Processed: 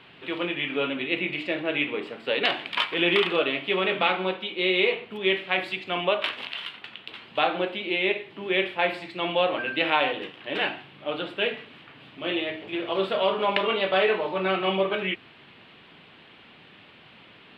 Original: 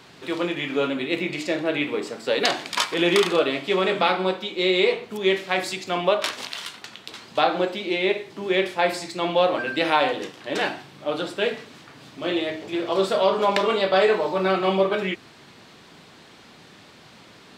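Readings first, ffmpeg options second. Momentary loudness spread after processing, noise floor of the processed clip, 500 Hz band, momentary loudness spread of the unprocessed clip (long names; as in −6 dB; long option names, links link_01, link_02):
10 LU, −52 dBFS, −4.5 dB, 10 LU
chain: -af "highshelf=frequency=4300:width_type=q:width=3:gain=-14,volume=-4.5dB"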